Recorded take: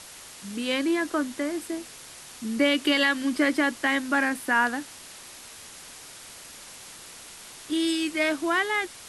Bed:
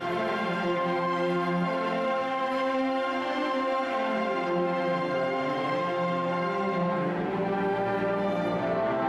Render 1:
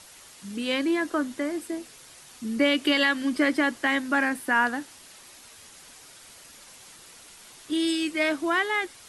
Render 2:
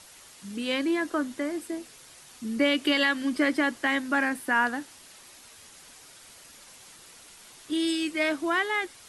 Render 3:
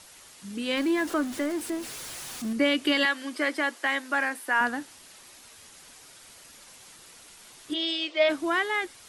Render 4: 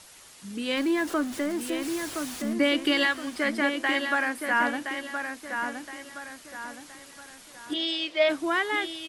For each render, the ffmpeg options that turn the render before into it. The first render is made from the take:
ffmpeg -i in.wav -af "afftdn=noise_reduction=6:noise_floor=-45" out.wav
ffmpeg -i in.wav -af "volume=-1.5dB" out.wav
ffmpeg -i in.wav -filter_complex "[0:a]asettb=1/sr,asplit=3[link_01][link_02][link_03];[link_01]atrim=end=0.774[link_04];[link_02]atrim=start=0.77:end=2.53,asetpts=PTS-STARTPTS,afade=type=in:duration=0.004:curve=qsin,afade=type=out:start_time=1.756:duration=0.004:curve=qsin,aeval=exprs='val(0)+0.5*0.0168*sgn(val(0))':channel_layout=same[link_05];[link_03]atrim=start=2.526[link_06];[link_04][link_05]acrossfade=duration=0.004:curve1=hsin:curve2=qsin[link_07];[link_07][link_06]acrossfade=duration=0.004:curve1=qsin:curve2=hsin,asettb=1/sr,asplit=3[link_08][link_09][link_10];[link_08]atrim=end=3.054[link_11];[link_09]atrim=start=3.05:end=4.61,asetpts=PTS-STARTPTS,afade=type=in:duration=0.004:curve=qsin,afade=type=out:start_time=1.556:duration=0.004:curve=qsin,highpass=430[link_12];[link_10]atrim=start=4.606[link_13];[link_11][link_12]acrossfade=duration=0.004:curve1=hsin:curve2=qsin[link_14];[link_14][link_13]acrossfade=duration=0.004:curve1=qsin:curve2=hsin,asplit=3[link_15][link_16][link_17];[link_15]afade=type=out:start_time=7.73:duration=0.02[link_18];[link_16]highpass=frequency=410:width=0.5412,highpass=frequency=410:width=1.3066,equalizer=frequency=610:width_type=q:width=4:gain=9,equalizer=frequency=1600:width_type=q:width=4:gain=-7,equalizer=frequency=3300:width_type=q:width=4:gain=8,lowpass=frequency=5400:width=0.5412,lowpass=frequency=5400:width=1.3066,afade=type=in:start_time=7.73:duration=0.02,afade=type=out:start_time=8.28:duration=0.02[link_19];[link_17]afade=type=in:start_time=8.28:duration=0.02[link_20];[link_18][link_19][link_20]amix=inputs=3:normalize=0" out.wav
ffmpeg -i in.wav -filter_complex "[0:a]asplit=2[link_01][link_02];[link_02]adelay=1019,lowpass=frequency=3500:poles=1,volume=-6dB,asplit=2[link_03][link_04];[link_04]adelay=1019,lowpass=frequency=3500:poles=1,volume=0.42,asplit=2[link_05][link_06];[link_06]adelay=1019,lowpass=frequency=3500:poles=1,volume=0.42,asplit=2[link_07][link_08];[link_08]adelay=1019,lowpass=frequency=3500:poles=1,volume=0.42,asplit=2[link_09][link_10];[link_10]adelay=1019,lowpass=frequency=3500:poles=1,volume=0.42[link_11];[link_01][link_03][link_05][link_07][link_09][link_11]amix=inputs=6:normalize=0" out.wav

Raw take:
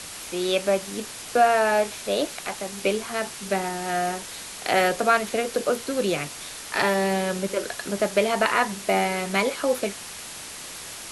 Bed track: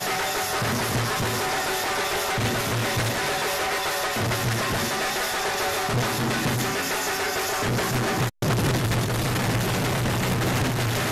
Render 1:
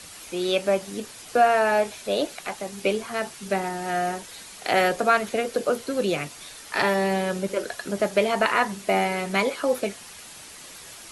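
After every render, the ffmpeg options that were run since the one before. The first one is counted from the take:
ffmpeg -i in.wav -af "afftdn=noise_reduction=7:noise_floor=-38" out.wav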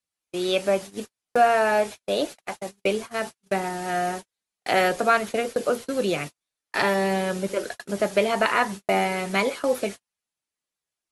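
ffmpeg -i in.wav -af "agate=range=-46dB:threshold=-32dB:ratio=16:detection=peak" out.wav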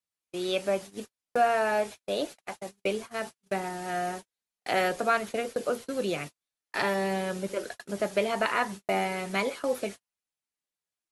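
ffmpeg -i in.wav -af "volume=-5.5dB" out.wav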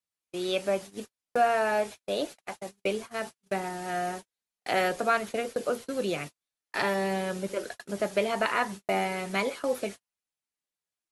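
ffmpeg -i in.wav -af anull out.wav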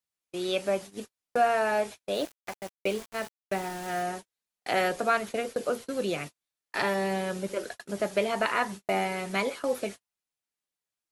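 ffmpeg -i in.wav -filter_complex "[0:a]asettb=1/sr,asplit=3[link_01][link_02][link_03];[link_01]atrim=end=2.144[link_04];[link_02]atrim=start=2.14:end=4.03,asetpts=PTS-STARTPTS,afade=type=in:duration=0.004:curve=qsin,afade=type=out:start_time=1.886:duration=0.004:curve=qsin,aeval=exprs='val(0)*gte(abs(val(0)),0.0112)':channel_layout=same[link_05];[link_03]atrim=start=4.026[link_06];[link_04][link_05]acrossfade=duration=0.004:curve1=hsin:curve2=qsin[link_07];[link_07][link_06]acrossfade=duration=0.004:curve1=qsin:curve2=hsin" out.wav

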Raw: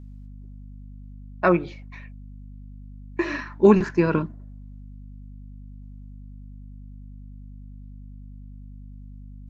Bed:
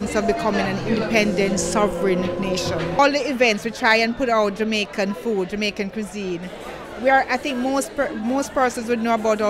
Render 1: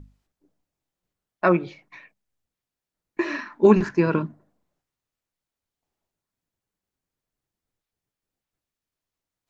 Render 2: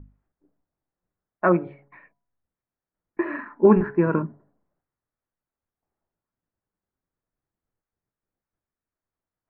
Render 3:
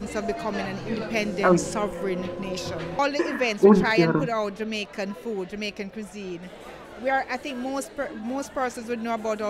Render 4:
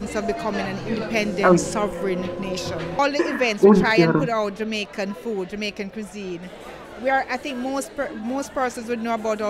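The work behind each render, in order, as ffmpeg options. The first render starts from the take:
ffmpeg -i in.wav -af "bandreject=frequency=50:width_type=h:width=6,bandreject=frequency=100:width_type=h:width=6,bandreject=frequency=150:width_type=h:width=6,bandreject=frequency=200:width_type=h:width=6,bandreject=frequency=250:width_type=h:width=6" out.wav
ffmpeg -i in.wav -af "lowpass=frequency=1800:width=0.5412,lowpass=frequency=1800:width=1.3066,bandreject=frequency=140.4:width_type=h:width=4,bandreject=frequency=280.8:width_type=h:width=4,bandreject=frequency=421.2:width_type=h:width=4,bandreject=frequency=561.6:width_type=h:width=4,bandreject=frequency=702:width_type=h:width=4,bandreject=frequency=842.4:width_type=h:width=4,bandreject=frequency=982.8:width_type=h:width=4" out.wav
ffmpeg -i in.wav -i bed.wav -filter_complex "[1:a]volume=-8dB[link_01];[0:a][link_01]amix=inputs=2:normalize=0" out.wav
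ffmpeg -i in.wav -af "volume=3.5dB,alimiter=limit=-3dB:level=0:latency=1" out.wav

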